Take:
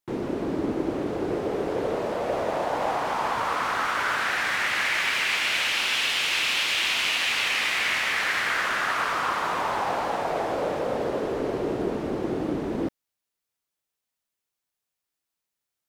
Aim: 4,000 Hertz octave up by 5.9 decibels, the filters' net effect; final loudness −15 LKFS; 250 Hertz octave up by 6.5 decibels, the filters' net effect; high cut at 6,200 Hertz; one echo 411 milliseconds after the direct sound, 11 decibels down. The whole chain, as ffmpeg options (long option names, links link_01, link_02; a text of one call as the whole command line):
ffmpeg -i in.wav -af "lowpass=6200,equalizer=frequency=250:width_type=o:gain=8.5,equalizer=frequency=4000:width_type=o:gain=8.5,aecho=1:1:411:0.282,volume=6.5dB" out.wav